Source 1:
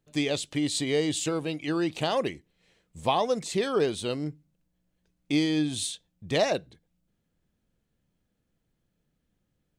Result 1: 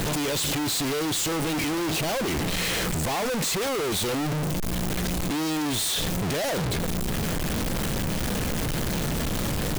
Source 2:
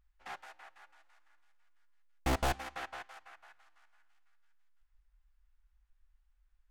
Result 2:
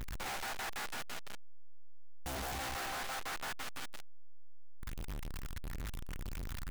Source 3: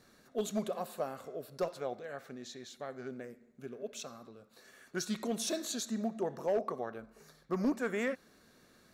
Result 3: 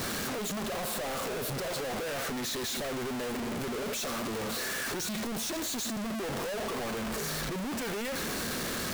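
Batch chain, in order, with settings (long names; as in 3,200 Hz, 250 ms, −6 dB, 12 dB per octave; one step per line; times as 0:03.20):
sign of each sample alone
level +4.5 dB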